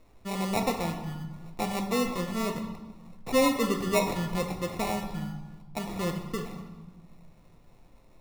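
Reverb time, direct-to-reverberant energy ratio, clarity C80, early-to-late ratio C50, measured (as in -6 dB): 1.2 s, 3.0 dB, 9.0 dB, 7.0 dB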